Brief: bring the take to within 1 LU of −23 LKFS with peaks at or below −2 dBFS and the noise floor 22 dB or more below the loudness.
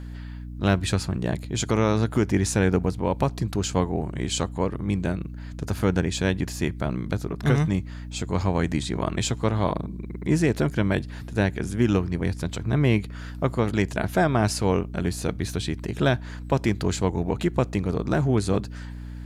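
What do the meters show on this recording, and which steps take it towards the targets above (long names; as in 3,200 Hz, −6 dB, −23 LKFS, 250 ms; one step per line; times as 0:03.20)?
mains hum 60 Hz; hum harmonics up to 300 Hz; level of the hum −33 dBFS; integrated loudness −25.5 LKFS; sample peak −8.5 dBFS; target loudness −23.0 LKFS
→ hum removal 60 Hz, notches 5
level +2.5 dB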